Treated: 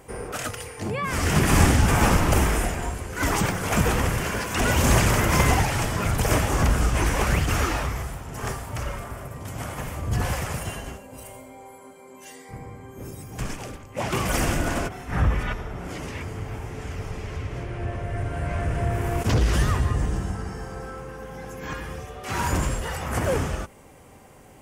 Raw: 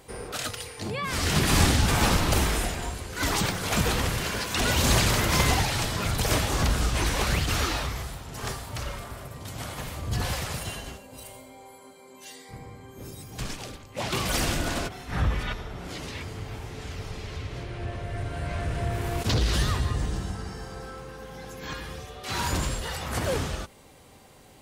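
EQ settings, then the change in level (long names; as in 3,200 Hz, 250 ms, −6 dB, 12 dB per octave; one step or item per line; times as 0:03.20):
parametric band 4,000 Hz −13 dB 0.64 octaves
high-shelf EQ 8,100 Hz −4 dB
+4.0 dB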